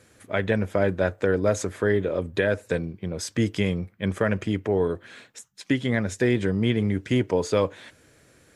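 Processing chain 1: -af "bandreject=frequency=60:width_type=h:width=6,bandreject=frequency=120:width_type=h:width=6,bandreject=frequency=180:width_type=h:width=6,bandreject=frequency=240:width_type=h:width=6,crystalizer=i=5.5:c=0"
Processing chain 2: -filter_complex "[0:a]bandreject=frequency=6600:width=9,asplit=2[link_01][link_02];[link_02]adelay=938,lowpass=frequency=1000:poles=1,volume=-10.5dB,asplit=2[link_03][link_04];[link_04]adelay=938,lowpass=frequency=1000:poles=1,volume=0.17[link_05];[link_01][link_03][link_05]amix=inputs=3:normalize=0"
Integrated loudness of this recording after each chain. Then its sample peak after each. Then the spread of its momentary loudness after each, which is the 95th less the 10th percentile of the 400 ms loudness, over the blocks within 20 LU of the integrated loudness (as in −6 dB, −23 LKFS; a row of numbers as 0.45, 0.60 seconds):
−23.0, −25.5 LKFS; −5.5, −9.0 dBFS; 8, 11 LU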